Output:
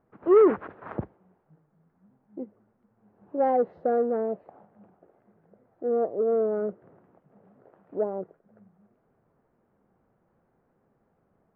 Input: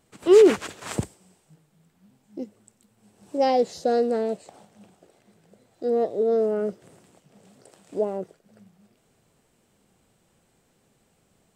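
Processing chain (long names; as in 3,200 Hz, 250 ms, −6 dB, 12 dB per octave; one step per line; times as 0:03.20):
low-pass filter 1,500 Hz 24 dB per octave
low-shelf EQ 190 Hz −4.5 dB
saturating transformer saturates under 490 Hz
level −1.5 dB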